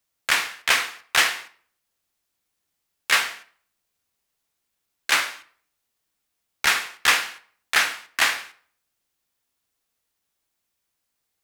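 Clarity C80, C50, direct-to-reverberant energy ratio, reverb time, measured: 20.0 dB, 16.0 dB, 10.5 dB, 0.50 s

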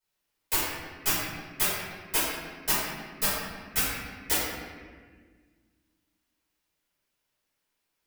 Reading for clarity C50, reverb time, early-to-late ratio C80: −2.0 dB, 1.6 s, 0.5 dB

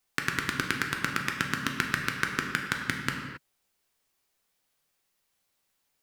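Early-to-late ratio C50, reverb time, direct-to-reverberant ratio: 4.0 dB, non-exponential decay, 1.0 dB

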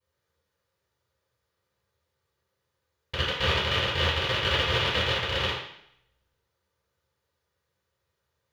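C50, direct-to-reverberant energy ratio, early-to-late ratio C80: 2.0 dB, −18.5 dB, 6.0 dB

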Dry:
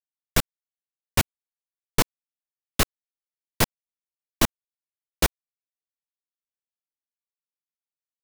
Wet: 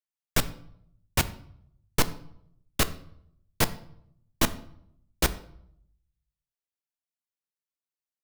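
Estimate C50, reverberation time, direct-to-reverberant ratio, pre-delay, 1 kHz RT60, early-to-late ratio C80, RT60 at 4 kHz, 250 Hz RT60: 16.5 dB, 0.70 s, 12.0 dB, 7 ms, 0.65 s, 19.0 dB, 0.50 s, 0.85 s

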